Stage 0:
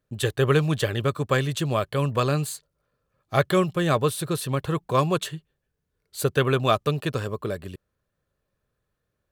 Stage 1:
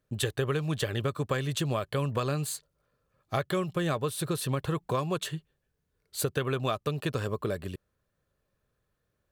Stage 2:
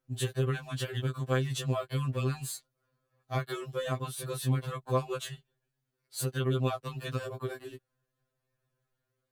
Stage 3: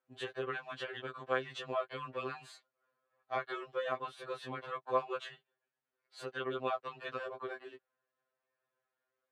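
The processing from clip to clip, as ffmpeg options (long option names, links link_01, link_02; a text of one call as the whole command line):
ffmpeg -i in.wav -af "acompressor=threshold=-26dB:ratio=6" out.wav
ffmpeg -i in.wav -af "afftfilt=real='re*2.45*eq(mod(b,6),0)':imag='im*2.45*eq(mod(b,6),0)':win_size=2048:overlap=0.75,volume=-1.5dB" out.wav
ffmpeg -i in.wav -af "highpass=540,lowpass=2400,volume=1dB" out.wav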